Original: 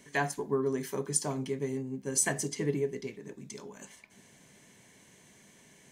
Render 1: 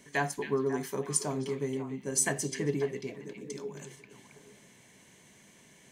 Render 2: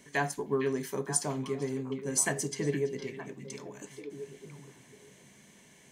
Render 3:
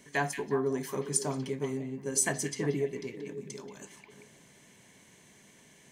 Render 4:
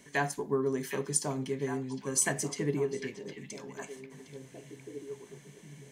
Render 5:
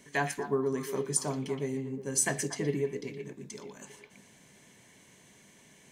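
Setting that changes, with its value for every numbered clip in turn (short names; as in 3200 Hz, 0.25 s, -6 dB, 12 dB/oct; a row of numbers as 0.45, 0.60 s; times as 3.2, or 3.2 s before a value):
delay with a stepping band-pass, time: 0.272, 0.461, 0.18, 0.758, 0.118 s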